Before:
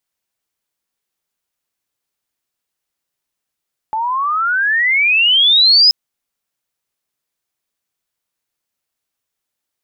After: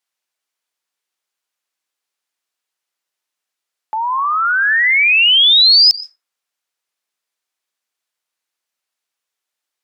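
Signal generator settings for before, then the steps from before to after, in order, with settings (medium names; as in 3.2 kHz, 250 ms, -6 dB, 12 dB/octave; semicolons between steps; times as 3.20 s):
gliding synth tone sine, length 1.98 s, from 858 Hz, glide +31 st, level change +10.5 dB, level -5.5 dB
frequency weighting A; plate-style reverb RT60 0.52 s, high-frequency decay 0.35×, pre-delay 115 ms, DRR 15.5 dB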